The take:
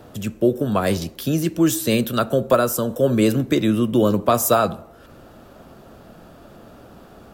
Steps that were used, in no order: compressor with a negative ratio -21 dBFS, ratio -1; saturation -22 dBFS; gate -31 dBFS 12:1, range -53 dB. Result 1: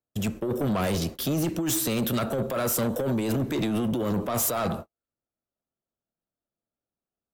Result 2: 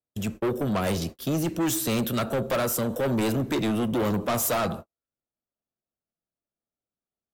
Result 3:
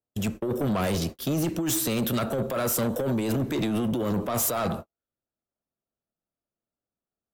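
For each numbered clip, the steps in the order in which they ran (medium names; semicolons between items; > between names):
compressor with a negative ratio > gate > saturation; gate > saturation > compressor with a negative ratio; gate > compressor with a negative ratio > saturation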